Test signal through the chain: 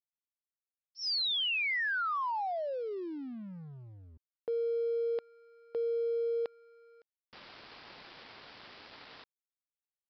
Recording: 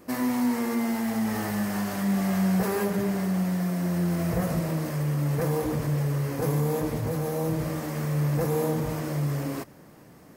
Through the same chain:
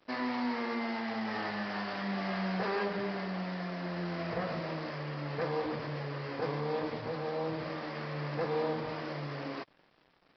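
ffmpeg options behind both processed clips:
ffmpeg -i in.wav -af "highpass=frequency=670:poles=1,aresample=11025,aeval=exprs='sgn(val(0))*max(abs(val(0))-0.00158,0)':channel_layout=same,aresample=44100" out.wav

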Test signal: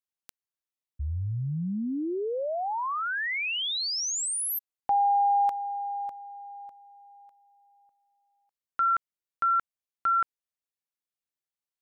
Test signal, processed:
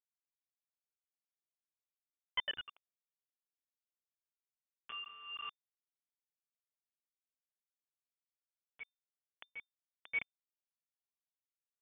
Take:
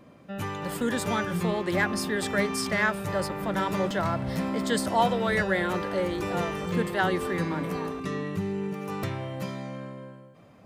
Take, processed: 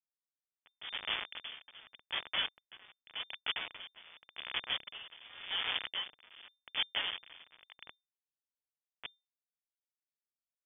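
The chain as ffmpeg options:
ffmpeg -i in.wav -filter_complex "[0:a]highpass=42,adynamicequalizer=threshold=0.00891:dfrequency=620:dqfactor=0.86:tfrequency=620:tqfactor=0.86:attack=5:release=100:ratio=0.375:range=4:mode=boostabove:tftype=bell,acrossover=split=520[link_01][link_02];[link_01]acompressor=mode=upward:threshold=-31dB:ratio=2.5:attack=2.6:release=209:knee=2.83:detection=peak[link_03];[link_02]alimiter=limit=-19.5dB:level=0:latency=1:release=17[link_04];[link_03][link_04]amix=inputs=2:normalize=0,flanger=delay=6.2:depth=8.3:regen=76:speed=0.23:shape=triangular,aresample=16000,acrusher=bits=3:mix=0:aa=0.000001,aresample=44100,asoftclip=type=hard:threshold=-23.5dB,lowpass=frequency=3100:width_type=q:width=0.5098,lowpass=frequency=3100:width_type=q:width=0.6013,lowpass=frequency=3100:width_type=q:width=0.9,lowpass=frequency=3100:width_type=q:width=2.563,afreqshift=-3600,aeval=exprs='val(0)*pow(10,-22*(0.5-0.5*cos(2*PI*0.87*n/s))/20)':channel_layout=same" out.wav

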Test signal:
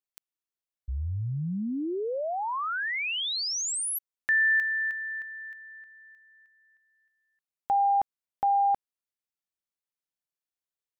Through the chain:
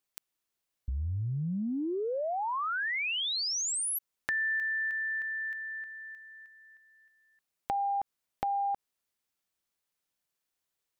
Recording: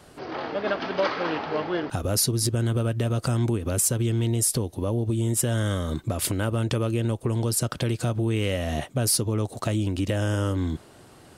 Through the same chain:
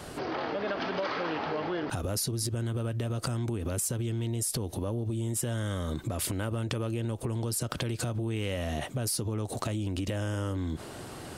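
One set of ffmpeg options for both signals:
ffmpeg -i in.wav -af "acompressor=threshold=-42dB:ratio=4:attack=14:release=39:knee=6:detection=rms,volume=8dB" out.wav

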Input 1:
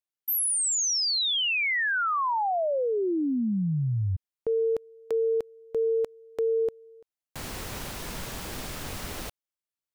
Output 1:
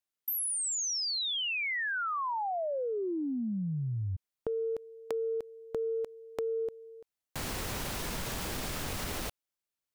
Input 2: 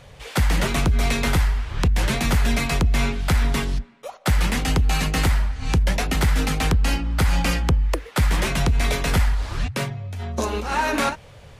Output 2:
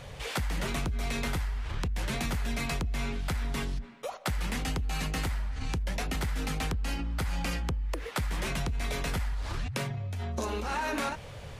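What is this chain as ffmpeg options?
ffmpeg -i in.wav -af "acompressor=threshold=-39dB:ratio=3:attack=45:release=29:knee=1:detection=rms,volume=1.5dB" out.wav

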